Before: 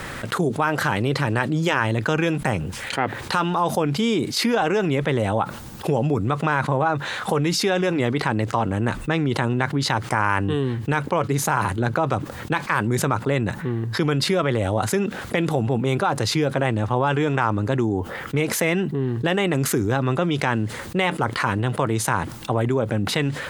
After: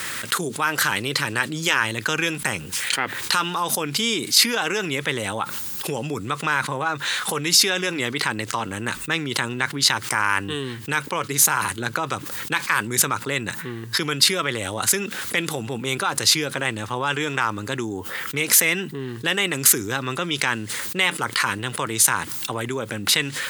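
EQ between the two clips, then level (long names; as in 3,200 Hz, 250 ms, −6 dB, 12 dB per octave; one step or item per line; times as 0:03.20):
spectral tilt +3.5 dB per octave
parametric band 690 Hz −8 dB 0.83 octaves
+1.0 dB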